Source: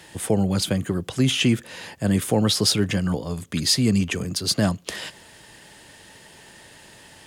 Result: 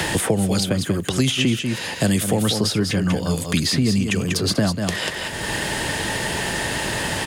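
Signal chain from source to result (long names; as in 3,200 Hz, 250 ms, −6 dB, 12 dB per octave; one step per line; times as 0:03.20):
single-tap delay 191 ms −8.5 dB
multiband upward and downward compressor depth 100%
level +1.5 dB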